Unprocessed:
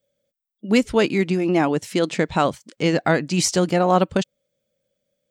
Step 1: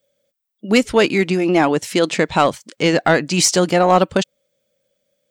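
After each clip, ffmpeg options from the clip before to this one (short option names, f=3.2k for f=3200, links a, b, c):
-af "lowshelf=f=290:g=-7.5,acontrast=83"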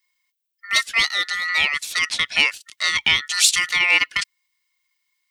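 -af "aeval=exprs='val(0)*sin(2*PI*1600*n/s)':c=same,highshelf=f=1.8k:t=q:w=1.5:g=13,volume=-11dB"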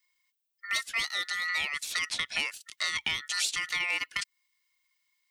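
-filter_complex "[0:a]acrossover=split=1400|7200[a][b][c];[a]acompressor=threshold=-38dB:ratio=4[d];[b]acompressor=threshold=-28dB:ratio=4[e];[c]acompressor=threshold=-37dB:ratio=4[f];[d][e][f]amix=inputs=3:normalize=0,volume=-3dB"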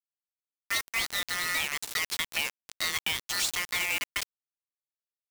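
-af "acrusher=bits=4:mix=0:aa=0.000001"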